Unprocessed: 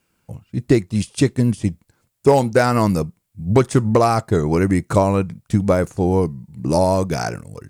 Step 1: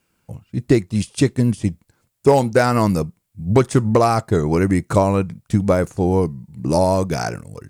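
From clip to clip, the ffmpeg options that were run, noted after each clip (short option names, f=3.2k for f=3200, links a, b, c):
-af anull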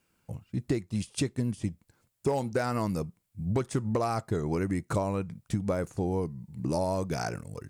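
-af "acompressor=threshold=-24dB:ratio=2.5,volume=-5dB"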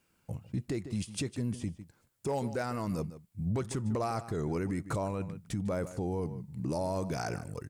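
-filter_complex "[0:a]asplit=2[a][b];[b]adelay=151.6,volume=-17dB,highshelf=f=4k:g=-3.41[c];[a][c]amix=inputs=2:normalize=0,alimiter=level_in=0.5dB:limit=-24dB:level=0:latency=1:release=20,volume=-0.5dB"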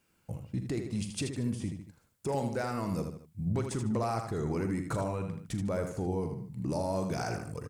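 -af "aecho=1:1:42|79:0.211|0.447"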